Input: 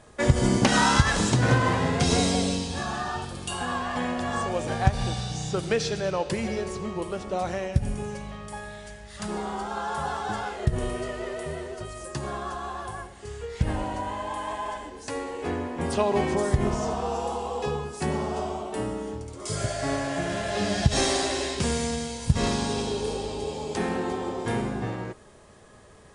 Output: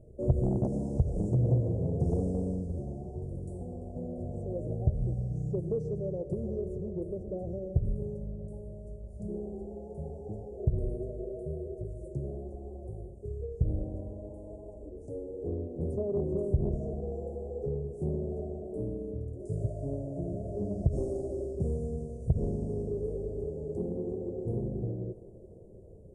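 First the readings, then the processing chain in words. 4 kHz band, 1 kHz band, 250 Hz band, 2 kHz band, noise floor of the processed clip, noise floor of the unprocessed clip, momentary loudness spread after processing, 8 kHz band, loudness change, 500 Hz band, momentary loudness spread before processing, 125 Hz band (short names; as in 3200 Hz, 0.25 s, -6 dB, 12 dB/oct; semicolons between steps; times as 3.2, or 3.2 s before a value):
under -40 dB, -24.0 dB, -6.5 dB, under -40 dB, -48 dBFS, -46 dBFS, 12 LU, under -30 dB, -7.0 dB, -6.0 dB, 13 LU, -3.0 dB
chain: in parallel at -0.5 dB: compressor, threshold -36 dBFS, peak gain reduction 21.5 dB; on the sum: inverse Chebyshev band-stop 1200–3400 Hz, stop band 70 dB; tape spacing loss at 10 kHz 27 dB; soft clip -12.5 dBFS, distortion -16 dB; fifteen-band EQ 250 Hz -11 dB, 630 Hz +10 dB, 2500 Hz +11 dB; on a send: thinning echo 0.342 s, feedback 80%, high-pass 180 Hz, level -18 dB; on the sum: gain -1.5 dB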